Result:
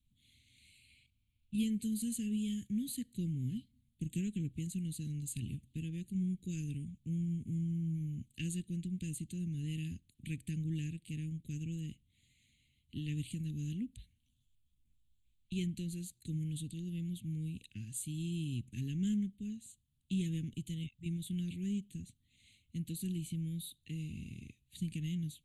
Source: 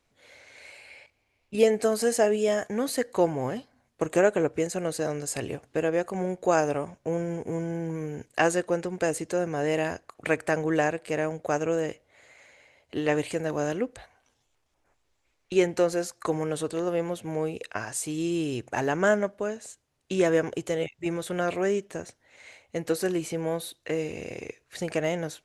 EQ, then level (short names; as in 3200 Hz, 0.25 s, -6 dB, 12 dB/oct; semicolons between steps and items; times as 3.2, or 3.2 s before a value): elliptic band-stop 220–3400 Hz, stop band 70 dB; low shelf 180 Hz +6.5 dB; fixed phaser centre 2300 Hz, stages 4; -3.5 dB